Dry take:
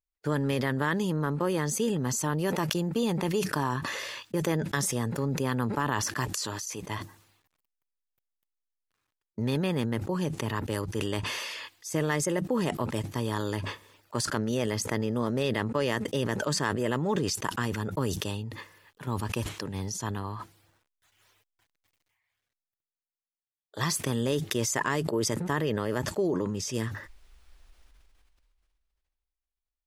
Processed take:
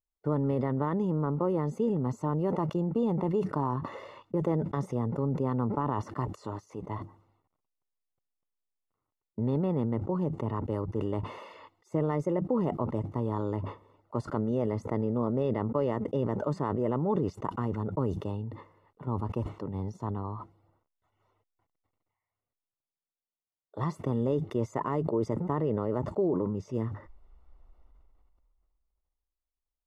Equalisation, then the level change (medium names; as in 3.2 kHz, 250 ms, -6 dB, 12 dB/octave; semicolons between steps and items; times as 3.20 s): Savitzky-Golay filter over 65 samples; 0.0 dB